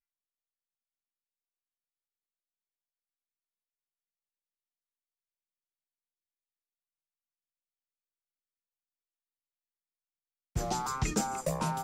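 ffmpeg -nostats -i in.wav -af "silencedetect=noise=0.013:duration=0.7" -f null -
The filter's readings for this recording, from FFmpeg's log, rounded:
silence_start: 0.00
silence_end: 10.56 | silence_duration: 10.56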